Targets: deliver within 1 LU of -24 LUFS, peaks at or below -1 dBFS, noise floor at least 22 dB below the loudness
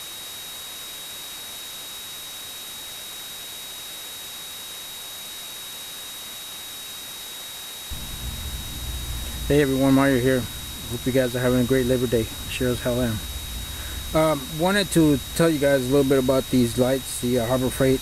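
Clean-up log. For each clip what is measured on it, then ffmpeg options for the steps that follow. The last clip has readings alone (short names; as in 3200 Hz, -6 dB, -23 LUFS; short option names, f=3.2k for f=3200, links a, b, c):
steady tone 3800 Hz; tone level -37 dBFS; noise floor -36 dBFS; noise floor target -47 dBFS; loudness -24.5 LUFS; peak -7.5 dBFS; loudness target -24.0 LUFS
-> -af "bandreject=f=3.8k:w=30"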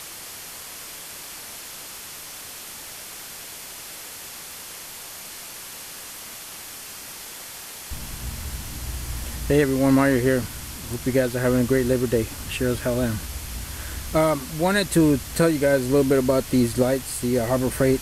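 steady tone none; noise floor -38 dBFS; noise floor target -45 dBFS
-> -af "afftdn=nr=7:nf=-38"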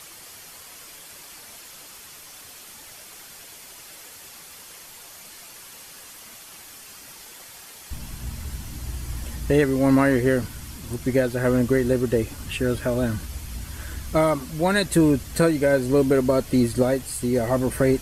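noise floor -44 dBFS; noise floor target -45 dBFS
-> -af "afftdn=nr=6:nf=-44"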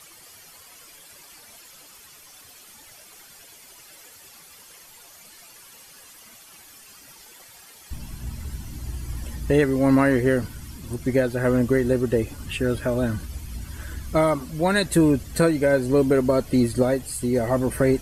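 noise floor -48 dBFS; loudness -22.0 LUFS; peak -8.0 dBFS; loudness target -24.0 LUFS
-> -af "volume=-2dB"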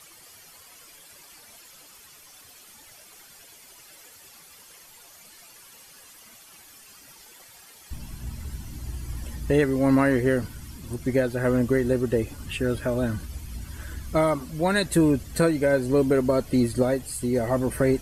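loudness -24.0 LUFS; peak -10.0 dBFS; noise floor -50 dBFS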